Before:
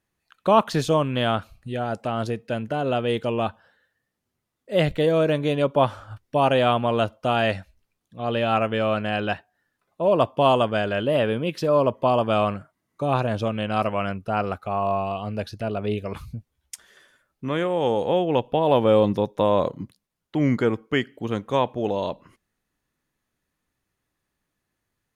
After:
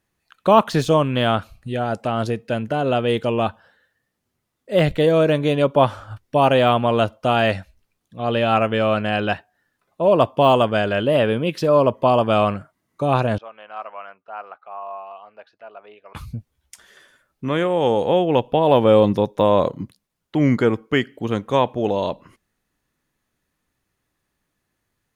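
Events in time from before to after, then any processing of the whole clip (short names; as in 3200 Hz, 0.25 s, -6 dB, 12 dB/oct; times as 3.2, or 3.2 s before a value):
13.38–16.15 ladder band-pass 1200 Hz, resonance 20%
whole clip: de-esser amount 70%; gain +4 dB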